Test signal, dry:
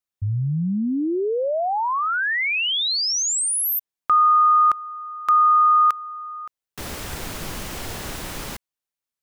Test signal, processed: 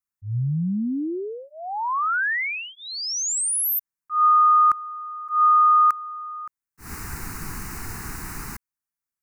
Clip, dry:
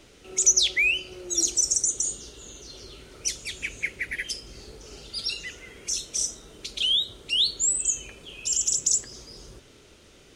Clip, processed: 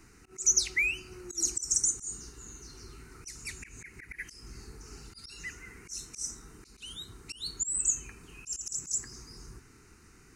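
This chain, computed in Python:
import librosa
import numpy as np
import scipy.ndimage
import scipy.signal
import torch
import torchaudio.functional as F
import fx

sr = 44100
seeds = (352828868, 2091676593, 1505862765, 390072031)

y = fx.auto_swell(x, sr, attack_ms=153.0)
y = fx.fixed_phaser(y, sr, hz=1400.0, stages=4)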